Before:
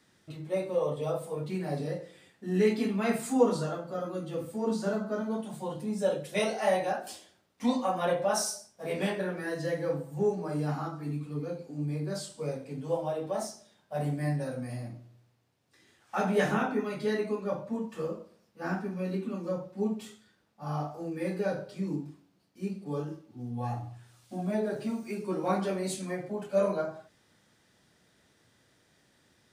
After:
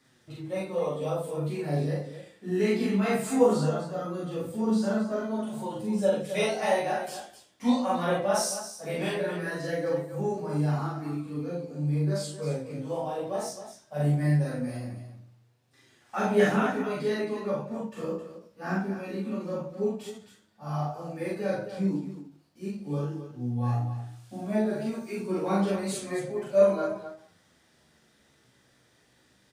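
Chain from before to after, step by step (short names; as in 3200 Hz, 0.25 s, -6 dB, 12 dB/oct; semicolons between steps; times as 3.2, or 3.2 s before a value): flange 0.19 Hz, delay 7.4 ms, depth 9.8 ms, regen +12%; loudspeakers at several distances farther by 14 m 0 dB, 91 m -9 dB; ending taper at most 200 dB/s; gain +2.5 dB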